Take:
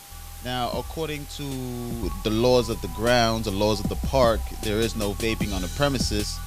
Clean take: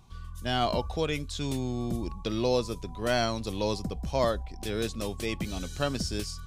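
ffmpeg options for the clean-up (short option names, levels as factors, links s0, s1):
-af "adeclick=t=4,bandreject=f=800:w=30,afwtdn=0.0063,asetnsamples=n=441:p=0,asendcmd='2.03 volume volume -7dB',volume=1"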